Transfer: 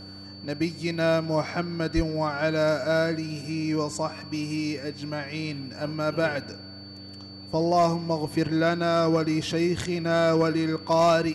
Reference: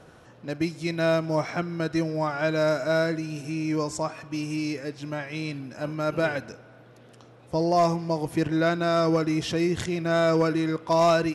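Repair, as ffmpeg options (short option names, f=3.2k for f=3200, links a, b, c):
-filter_complex "[0:a]bandreject=f=97.4:t=h:w=4,bandreject=f=194.8:t=h:w=4,bandreject=f=292.2:t=h:w=4,bandreject=f=4.5k:w=30,asplit=3[a][b][c];[a]afade=t=out:st=1.95:d=0.02[d];[b]highpass=f=140:w=0.5412,highpass=f=140:w=1.3066,afade=t=in:st=1.95:d=0.02,afade=t=out:st=2.07:d=0.02[e];[c]afade=t=in:st=2.07:d=0.02[f];[d][e][f]amix=inputs=3:normalize=0"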